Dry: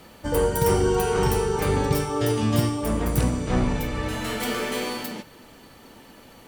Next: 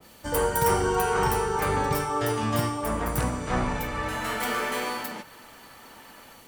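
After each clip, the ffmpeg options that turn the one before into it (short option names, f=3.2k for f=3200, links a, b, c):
-filter_complex "[0:a]highshelf=f=3.7k:g=10.5,acrossover=split=340|720|2000[a][b][c][d];[c]dynaudnorm=f=210:g=3:m=11dB[e];[a][b][e][d]amix=inputs=4:normalize=0,adynamicequalizer=threshold=0.02:dfrequency=2000:dqfactor=0.7:tfrequency=2000:tqfactor=0.7:attack=5:release=100:ratio=0.375:range=2.5:mode=cutabove:tftype=highshelf,volume=-6dB"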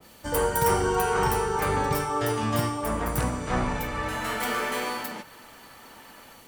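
-af anull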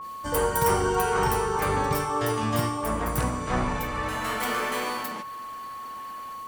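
-af "aeval=exprs='val(0)+0.0178*sin(2*PI*1100*n/s)':c=same"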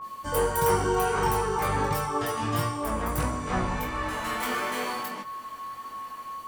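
-af "flanger=delay=19:depth=2.9:speed=1.5,volume=1.5dB"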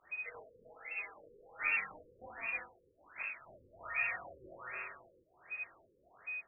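-af "tremolo=f=0.51:d=0.62,lowpass=f=3.1k:t=q:w=0.5098,lowpass=f=3.1k:t=q:w=0.6013,lowpass=f=3.1k:t=q:w=0.9,lowpass=f=3.1k:t=q:w=2.563,afreqshift=-3600,afftfilt=real='re*lt(b*sr/1024,540*pow(2800/540,0.5+0.5*sin(2*PI*1.3*pts/sr)))':imag='im*lt(b*sr/1024,540*pow(2800/540,0.5+0.5*sin(2*PI*1.3*pts/sr)))':win_size=1024:overlap=0.75,volume=-1dB"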